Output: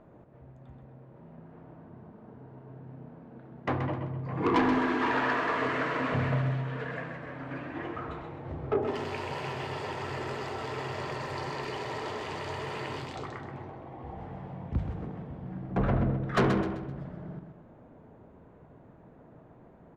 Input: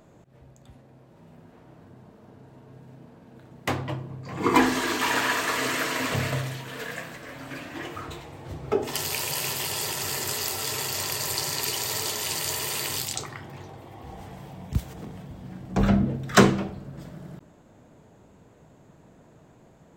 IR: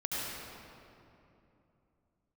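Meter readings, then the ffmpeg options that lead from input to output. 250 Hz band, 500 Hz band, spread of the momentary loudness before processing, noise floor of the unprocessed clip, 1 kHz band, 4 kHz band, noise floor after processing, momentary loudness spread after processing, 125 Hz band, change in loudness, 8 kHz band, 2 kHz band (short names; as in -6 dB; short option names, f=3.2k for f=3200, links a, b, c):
-4.0 dB, -2.0 dB, 20 LU, -55 dBFS, -2.5 dB, -13.5 dB, -54 dBFS, 23 LU, -1.5 dB, -6.0 dB, -26.0 dB, -5.5 dB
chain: -filter_complex "[0:a]lowpass=1.6k,bandreject=f=50:t=h:w=6,bandreject=f=100:t=h:w=6,bandreject=f=150:t=h:w=6,bandreject=f=200:t=h:w=6,asoftclip=type=tanh:threshold=-20dB,asplit=2[a][b];[b]aecho=0:1:129|258|387|516:0.447|0.17|0.0645|0.0245[c];[a][c]amix=inputs=2:normalize=0"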